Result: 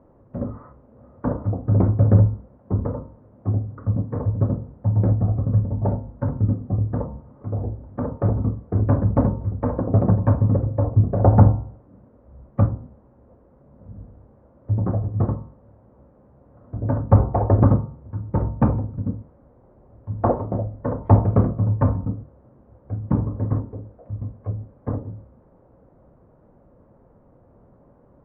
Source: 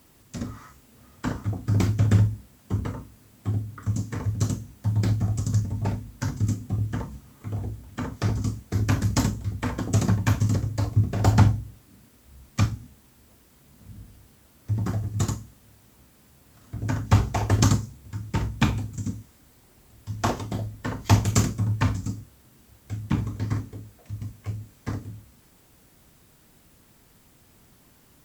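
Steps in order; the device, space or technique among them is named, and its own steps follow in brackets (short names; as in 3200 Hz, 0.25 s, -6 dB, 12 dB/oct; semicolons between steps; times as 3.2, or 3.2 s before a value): under water (LPF 1100 Hz 24 dB/oct; bell 540 Hz +10.5 dB 0.44 oct); de-hum 76.14 Hz, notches 18; gain +4.5 dB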